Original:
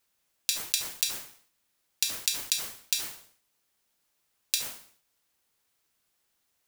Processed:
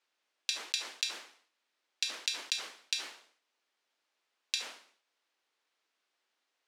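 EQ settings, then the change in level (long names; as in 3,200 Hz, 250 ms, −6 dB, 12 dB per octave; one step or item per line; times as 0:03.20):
high-pass filter 260 Hz 24 dB per octave
low-pass filter 4,200 Hz 12 dB per octave
low-shelf EQ 340 Hz −6.5 dB
0.0 dB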